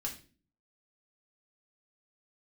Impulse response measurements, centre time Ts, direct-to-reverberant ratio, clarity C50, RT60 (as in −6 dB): 16 ms, −1.0 dB, 10.5 dB, 0.40 s